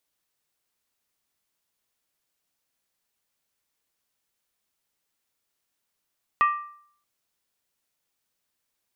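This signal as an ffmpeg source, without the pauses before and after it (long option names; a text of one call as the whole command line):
ffmpeg -f lavfi -i "aevalsrc='0.188*pow(10,-3*t/0.6)*sin(2*PI*1180*t)+0.0708*pow(10,-3*t/0.475)*sin(2*PI*1880.9*t)+0.0266*pow(10,-3*t/0.411)*sin(2*PI*2520.5*t)+0.01*pow(10,-3*t/0.396)*sin(2*PI*2709.3*t)+0.00376*pow(10,-3*t/0.368)*sin(2*PI*3130.5*t)':duration=0.63:sample_rate=44100" out.wav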